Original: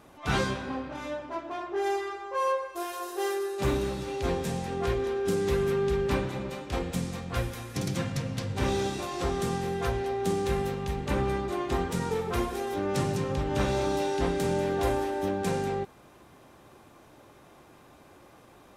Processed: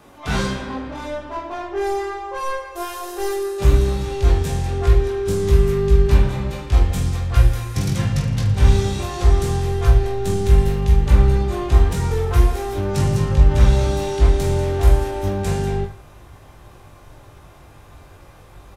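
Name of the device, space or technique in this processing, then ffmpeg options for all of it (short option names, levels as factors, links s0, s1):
one-band saturation: -filter_complex "[0:a]acrossover=split=270|4500[s0][s1][s2];[s1]asoftclip=type=tanh:threshold=0.0422[s3];[s0][s3][s2]amix=inputs=3:normalize=0,asubboost=boost=8.5:cutoff=82,aecho=1:1:20|45|76.25|115.3|164.1:0.631|0.398|0.251|0.158|0.1,volume=1.78"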